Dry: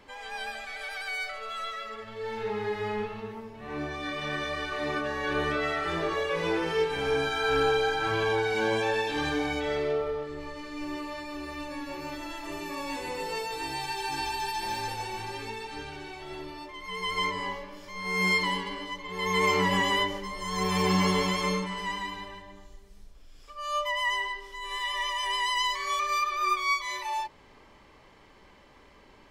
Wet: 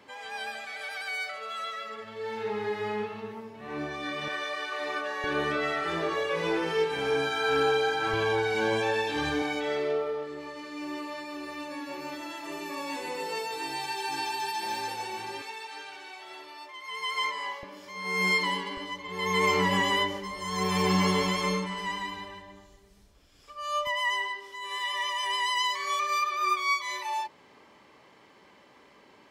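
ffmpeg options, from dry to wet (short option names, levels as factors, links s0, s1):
-af "asetnsamples=n=441:p=0,asendcmd='4.28 highpass f 490;5.24 highpass f 130;8.13 highpass f 54;9.42 highpass f 200;15.42 highpass f 670;17.63 highpass f 180;18.77 highpass f 61;23.87 highpass f 160',highpass=130"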